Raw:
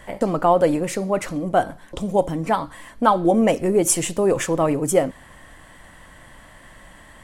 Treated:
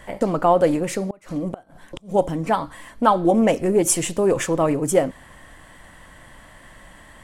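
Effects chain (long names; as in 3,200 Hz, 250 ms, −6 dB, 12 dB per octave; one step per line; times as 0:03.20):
0:01.09–0:02.15: gate with flip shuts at −15 dBFS, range −28 dB
highs frequency-modulated by the lows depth 0.11 ms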